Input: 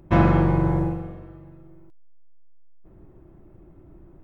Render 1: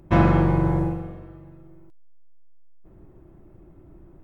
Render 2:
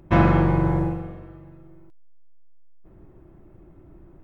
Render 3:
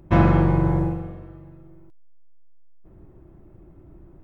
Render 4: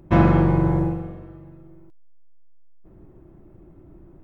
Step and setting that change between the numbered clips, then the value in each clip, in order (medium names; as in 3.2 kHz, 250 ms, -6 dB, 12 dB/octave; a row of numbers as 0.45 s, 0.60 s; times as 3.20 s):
peaking EQ, frequency: 11 kHz, 2.1 kHz, 70 Hz, 240 Hz